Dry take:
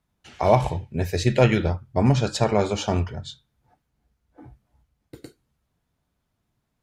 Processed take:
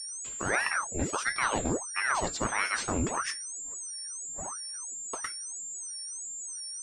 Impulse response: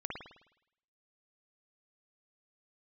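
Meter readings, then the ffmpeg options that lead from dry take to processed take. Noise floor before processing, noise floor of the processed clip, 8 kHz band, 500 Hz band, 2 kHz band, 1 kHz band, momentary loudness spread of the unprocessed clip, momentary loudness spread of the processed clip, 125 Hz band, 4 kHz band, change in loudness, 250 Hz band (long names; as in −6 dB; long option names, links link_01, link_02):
−77 dBFS, −40 dBFS, +10.0 dB, −13.5 dB, +4.5 dB, −5.0 dB, 9 LU, 8 LU, −17.5 dB, −3.0 dB, −9.5 dB, −10.5 dB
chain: -af "areverse,acompressor=threshold=-32dB:ratio=5,areverse,aeval=exprs='val(0)+0.01*sin(2*PI*7300*n/s)':channel_layout=same,aresample=22050,aresample=44100,aeval=exprs='val(0)*sin(2*PI*1000*n/s+1000*0.85/1.5*sin(2*PI*1.5*n/s))':channel_layout=same,volume=6.5dB"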